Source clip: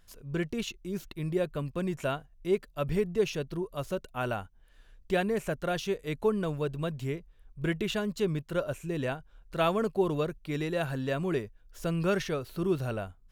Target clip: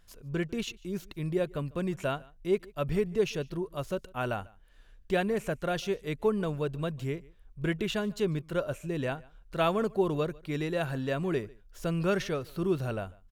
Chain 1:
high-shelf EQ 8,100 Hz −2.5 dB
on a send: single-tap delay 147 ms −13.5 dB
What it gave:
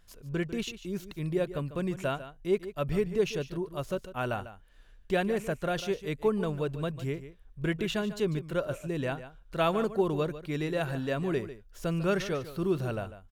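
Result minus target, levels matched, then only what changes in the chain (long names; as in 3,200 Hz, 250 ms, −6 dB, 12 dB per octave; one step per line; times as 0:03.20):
echo-to-direct +11 dB
change: single-tap delay 147 ms −24.5 dB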